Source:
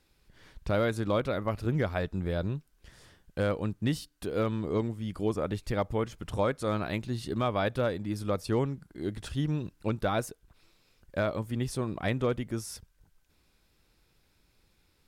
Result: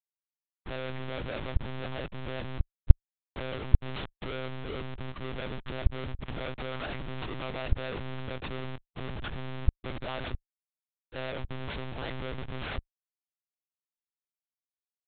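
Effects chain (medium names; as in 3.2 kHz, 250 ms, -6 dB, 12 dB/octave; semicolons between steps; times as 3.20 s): bass shelf 81 Hz -7.5 dB; Schmitt trigger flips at -39.5 dBFS; level rider gain up to 5.5 dB; monotone LPC vocoder at 8 kHz 130 Hz; treble shelf 2.8 kHz +8.5 dB; trim -8 dB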